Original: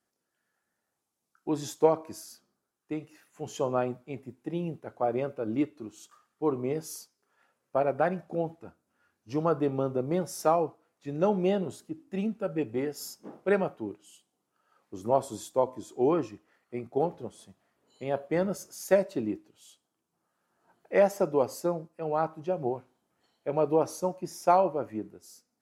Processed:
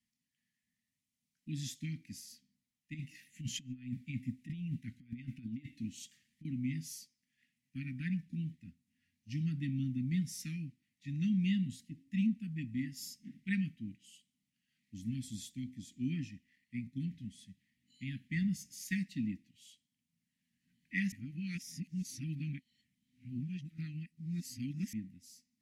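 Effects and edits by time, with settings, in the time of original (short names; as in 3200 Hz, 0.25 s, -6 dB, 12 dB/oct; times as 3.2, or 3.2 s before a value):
2.94–6.45 negative-ratio compressor -38 dBFS
12.29–12.97 dynamic EQ 2500 Hz, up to -4 dB, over -53 dBFS, Q 1.1
21.12–24.93 reverse
whole clip: Chebyshev band-stop 260–1900 Hz, order 5; high shelf 6400 Hz -10 dB; gain +1 dB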